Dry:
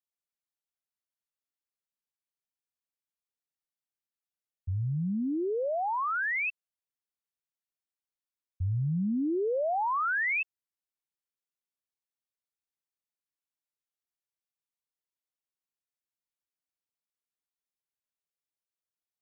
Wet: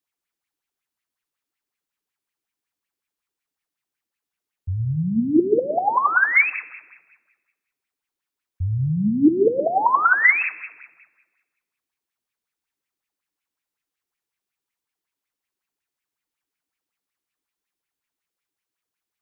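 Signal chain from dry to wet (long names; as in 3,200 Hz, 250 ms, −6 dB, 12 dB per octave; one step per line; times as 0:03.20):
parametric band 600 Hz −6.5 dB 0.47 octaves
convolution reverb RT60 1.4 s, pre-delay 19 ms, DRR 11.5 dB
auto-filter bell 5.4 Hz 280–2,500 Hz +13 dB
level +6.5 dB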